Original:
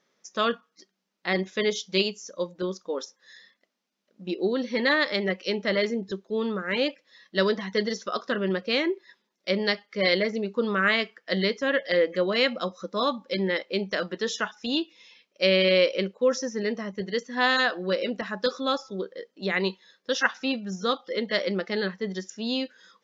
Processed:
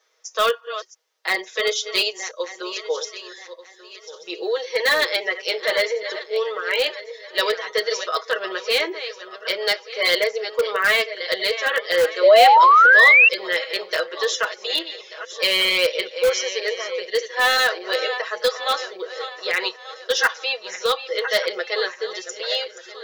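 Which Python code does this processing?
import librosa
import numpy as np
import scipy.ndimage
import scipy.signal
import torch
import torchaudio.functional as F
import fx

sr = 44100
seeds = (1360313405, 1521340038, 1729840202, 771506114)

p1 = fx.reverse_delay_fb(x, sr, ms=593, feedback_pct=54, wet_db=-12.0)
p2 = scipy.signal.sosfilt(scipy.signal.ellip(4, 1.0, 40, 400.0, 'highpass', fs=sr, output='sos'), p1)
p3 = fx.high_shelf(p2, sr, hz=2900.0, db=5.0)
p4 = p3 + 0.87 * np.pad(p3, (int(6.3 * sr / 1000.0), 0))[:len(p3)]
p5 = (np.mod(10.0 ** (14.0 / 20.0) * p4 + 1.0, 2.0) - 1.0) / 10.0 ** (14.0 / 20.0)
p6 = p4 + (p5 * librosa.db_to_amplitude(-12.0))
p7 = fx.spec_paint(p6, sr, seeds[0], shape='rise', start_s=12.23, length_s=1.06, low_hz=540.0, high_hz=2800.0, level_db=-12.0)
y = p7 * librosa.db_to_amplitude(1.0)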